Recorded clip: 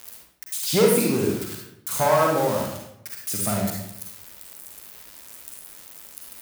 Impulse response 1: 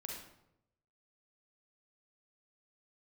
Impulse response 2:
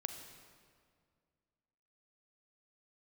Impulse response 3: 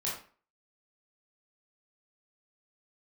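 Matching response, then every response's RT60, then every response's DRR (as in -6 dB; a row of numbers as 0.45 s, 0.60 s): 1; 0.80 s, 2.1 s, 0.40 s; -1.5 dB, 6.5 dB, -6.0 dB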